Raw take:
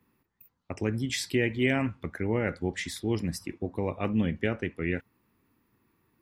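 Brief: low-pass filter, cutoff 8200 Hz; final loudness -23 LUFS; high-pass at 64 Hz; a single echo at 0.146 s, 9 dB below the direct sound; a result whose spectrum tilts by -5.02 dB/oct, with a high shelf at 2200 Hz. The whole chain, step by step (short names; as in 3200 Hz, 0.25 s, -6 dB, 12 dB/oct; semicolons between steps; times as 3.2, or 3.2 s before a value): HPF 64 Hz; LPF 8200 Hz; high shelf 2200 Hz +4.5 dB; echo 0.146 s -9 dB; gain +6 dB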